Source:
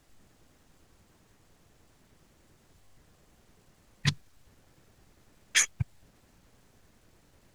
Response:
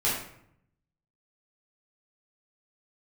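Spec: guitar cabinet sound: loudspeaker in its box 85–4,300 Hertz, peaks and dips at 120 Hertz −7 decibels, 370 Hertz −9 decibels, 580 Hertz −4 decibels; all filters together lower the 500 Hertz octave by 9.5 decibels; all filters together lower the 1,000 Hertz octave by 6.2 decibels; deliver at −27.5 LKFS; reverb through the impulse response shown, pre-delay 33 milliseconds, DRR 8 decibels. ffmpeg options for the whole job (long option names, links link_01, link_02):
-filter_complex "[0:a]equalizer=frequency=500:width_type=o:gain=-4.5,equalizer=frequency=1000:width_type=o:gain=-7,asplit=2[link_01][link_02];[1:a]atrim=start_sample=2205,adelay=33[link_03];[link_02][link_03]afir=irnorm=-1:irlink=0,volume=-19dB[link_04];[link_01][link_04]amix=inputs=2:normalize=0,highpass=85,equalizer=frequency=120:width_type=q:width=4:gain=-7,equalizer=frequency=370:width_type=q:width=4:gain=-9,equalizer=frequency=580:width_type=q:width=4:gain=-4,lowpass=frequency=4300:width=0.5412,lowpass=frequency=4300:width=1.3066,volume=6dB"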